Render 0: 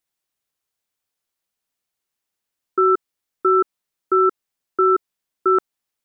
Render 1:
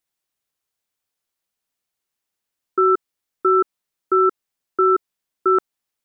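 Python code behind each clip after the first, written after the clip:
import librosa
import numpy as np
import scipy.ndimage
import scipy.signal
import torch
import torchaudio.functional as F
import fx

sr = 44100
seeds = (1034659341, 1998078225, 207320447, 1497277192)

y = x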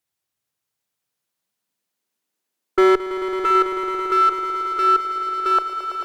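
y = fx.filter_sweep_highpass(x, sr, from_hz=84.0, to_hz=680.0, start_s=0.17, end_s=3.89, q=2.2)
y = fx.clip_asym(y, sr, top_db=-13.5, bottom_db=-7.5)
y = fx.echo_swell(y, sr, ms=110, loudest=5, wet_db=-12)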